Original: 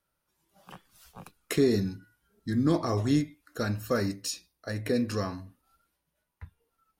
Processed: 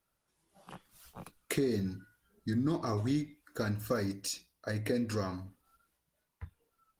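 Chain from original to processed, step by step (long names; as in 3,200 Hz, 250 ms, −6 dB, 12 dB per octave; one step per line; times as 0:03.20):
0:02.55–0:03.58: dynamic equaliser 510 Hz, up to −5 dB, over −43 dBFS, Q 5
downward compressor 2.5 to 1, threshold −30 dBFS, peak gain reduction 8 dB
Opus 20 kbit/s 48,000 Hz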